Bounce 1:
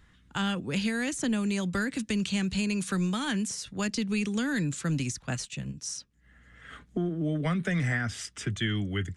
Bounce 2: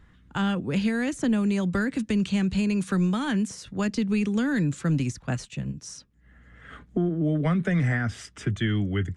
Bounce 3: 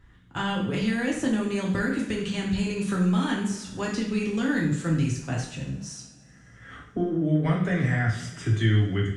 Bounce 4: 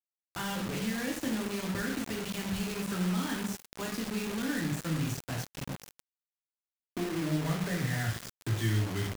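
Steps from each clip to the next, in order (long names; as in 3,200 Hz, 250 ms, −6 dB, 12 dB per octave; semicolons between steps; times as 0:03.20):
high-shelf EQ 2,200 Hz −11 dB; level +5 dB
coupled-rooms reverb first 0.6 s, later 3.3 s, from −22 dB, DRR −3 dB; level −3.5 dB
bit reduction 5 bits; level −8 dB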